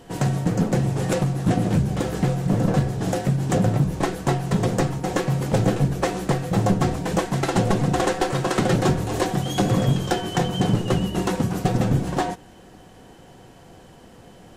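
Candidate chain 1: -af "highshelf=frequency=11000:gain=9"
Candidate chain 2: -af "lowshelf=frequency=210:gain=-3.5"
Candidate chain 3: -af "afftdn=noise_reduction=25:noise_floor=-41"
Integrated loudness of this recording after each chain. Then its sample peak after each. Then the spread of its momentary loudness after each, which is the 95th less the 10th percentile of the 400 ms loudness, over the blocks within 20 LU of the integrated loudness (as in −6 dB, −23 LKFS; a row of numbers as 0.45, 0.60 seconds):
−22.5, −24.0, −22.5 LKFS; −10.5, −10.5, −11.0 dBFS; 4, 4, 4 LU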